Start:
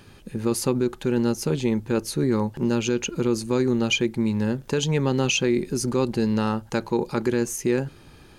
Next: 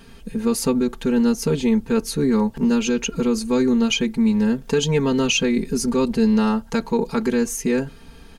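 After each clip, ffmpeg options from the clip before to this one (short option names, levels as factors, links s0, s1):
-af "lowshelf=f=90:g=6.5,aecho=1:1:4.4:0.98"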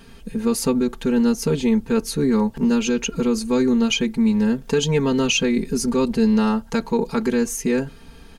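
-af anull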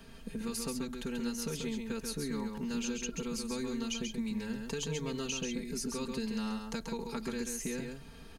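-filter_complex "[0:a]acrossover=split=120|1400|3900[s0][s1][s2][s3];[s0]acompressor=threshold=0.00794:ratio=4[s4];[s1]acompressor=threshold=0.0251:ratio=4[s5];[s2]acompressor=threshold=0.00794:ratio=4[s6];[s3]acompressor=threshold=0.0251:ratio=4[s7];[s4][s5][s6][s7]amix=inputs=4:normalize=0,aeval=exprs='val(0)+0.000891*sin(2*PI*640*n/s)':c=same,aecho=1:1:135:0.562,volume=0.447"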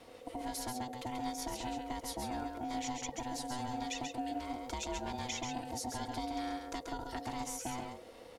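-af "aeval=exprs='val(0)*sin(2*PI*500*n/s)':c=same"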